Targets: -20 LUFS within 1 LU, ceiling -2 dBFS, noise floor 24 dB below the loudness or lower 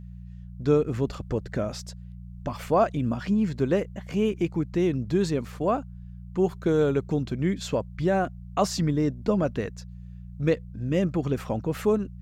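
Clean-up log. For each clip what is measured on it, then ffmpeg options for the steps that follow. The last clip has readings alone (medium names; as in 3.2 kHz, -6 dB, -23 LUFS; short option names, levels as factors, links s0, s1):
hum 60 Hz; highest harmonic 180 Hz; hum level -38 dBFS; loudness -26.5 LUFS; peak level -9.5 dBFS; loudness target -20.0 LUFS
-> -af "bandreject=f=60:t=h:w=4,bandreject=f=120:t=h:w=4,bandreject=f=180:t=h:w=4"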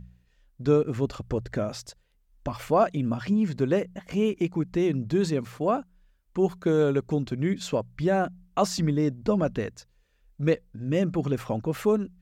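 hum not found; loudness -27.0 LUFS; peak level -9.5 dBFS; loudness target -20.0 LUFS
-> -af "volume=2.24"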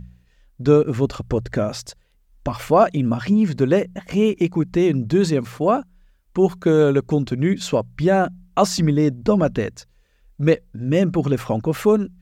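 loudness -20.0 LUFS; peak level -2.5 dBFS; noise floor -59 dBFS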